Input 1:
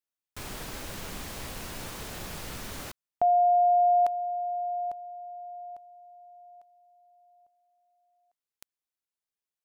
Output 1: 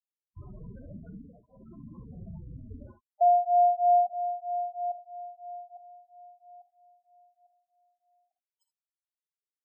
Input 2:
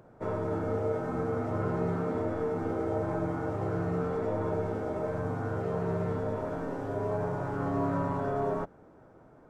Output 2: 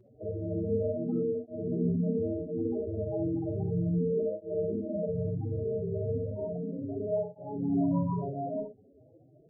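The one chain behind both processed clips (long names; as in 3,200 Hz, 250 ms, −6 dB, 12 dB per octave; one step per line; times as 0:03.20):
dynamic equaliser 210 Hz, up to +7 dB, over −50 dBFS, Q 3.1
spectral peaks only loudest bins 8
reverb whose tail is shaped and stops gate 90 ms rising, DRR 7.5 dB
through-zero flanger with one copy inverted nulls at 0.34 Hz, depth 6.5 ms
level +3 dB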